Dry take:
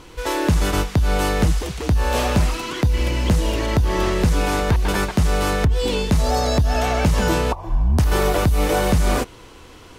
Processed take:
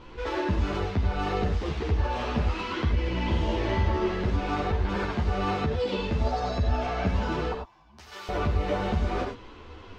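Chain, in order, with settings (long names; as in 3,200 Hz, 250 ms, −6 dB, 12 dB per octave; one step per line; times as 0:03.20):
0:05.43–0:05.96: high-pass filter 68 Hz → 180 Hz 12 dB per octave
0:07.53–0:08.29: first difference
brickwall limiter −16 dBFS, peak gain reduction 8 dB
high-frequency loss of the air 210 metres
0:03.12–0:03.87: flutter between parallel walls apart 7.6 metres, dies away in 0.7 s
reverb whose tail is shaped and stops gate 120 ms rising, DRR 3.5 dB
string-ensemble chorus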